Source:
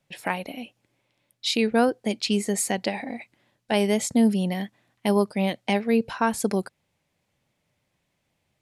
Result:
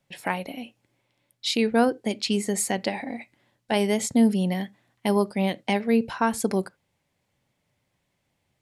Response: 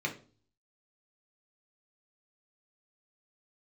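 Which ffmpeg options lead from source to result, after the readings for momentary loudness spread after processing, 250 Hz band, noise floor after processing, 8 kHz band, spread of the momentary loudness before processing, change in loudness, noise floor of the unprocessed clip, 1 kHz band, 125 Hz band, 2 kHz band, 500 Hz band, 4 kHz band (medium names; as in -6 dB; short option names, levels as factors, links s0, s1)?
15 LU, 0.0 dB, -75 dBFS, -0.5 dB, 15 LU, 0.0 dB, -76 dBFS, 0.0 dB, 0.0 dB, -0.5 dB, -0.5 dB, -1.0 dB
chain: -filter_complex "[0:a]asplit=2[s0][s1];[1:a]atrim=start_sample=2205,afade=t=out:st=0.14:d=0.01,atrim=end_sample=6615[s2];[s1][s2]afir=irnorm=-1:irlink=0,volume=0.1[s3];[s0][s3]amix=inputs=2:normalize=0"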